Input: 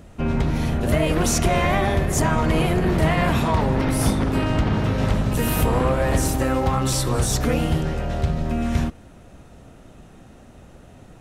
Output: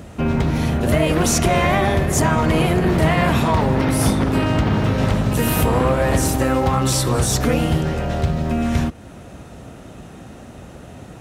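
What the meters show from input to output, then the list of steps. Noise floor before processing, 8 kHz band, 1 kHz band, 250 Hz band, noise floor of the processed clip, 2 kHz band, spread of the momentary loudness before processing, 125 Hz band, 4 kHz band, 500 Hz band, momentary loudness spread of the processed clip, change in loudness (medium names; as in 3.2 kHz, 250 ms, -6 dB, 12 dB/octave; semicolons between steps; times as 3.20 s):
-46 dBFS, +3.5 dB, +3.5 dB, +3.5 dB, -39 dBFS, +3.5 dB, 5 LU, +3.0 dB, +3.5 dB, +3.5 dB, 4 LU, +3.0 dB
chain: high-pass 61 Hz; in parallel at +2 dB: compression, threshold -33 dBFS, peak gain reduction 17 dB; on the sum: short-mantissa float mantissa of 6-bit; trim +1.5 dB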